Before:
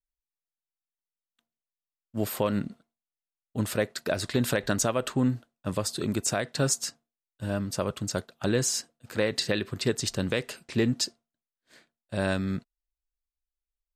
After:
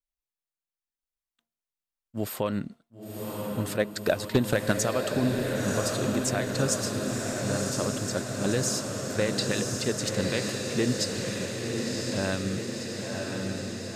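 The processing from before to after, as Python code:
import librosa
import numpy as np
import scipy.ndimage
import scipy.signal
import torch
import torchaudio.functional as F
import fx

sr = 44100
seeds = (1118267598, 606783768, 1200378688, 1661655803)

y = fx.transient(x, sr, attack_db=8, sustain_db=-6, at=(3.79, 4.71), fade=0.02)
y = np.clip(y, -10.0 ** (-11.0 / 20.0), 10.0 ** (-11.0 / 20.0))
y = fx.echo_diffused(y, sr, ms=1033, feedback_pct=70, wet_db=-3)
y = F.gain(torch.from_numpy(y), -2.0).numpy()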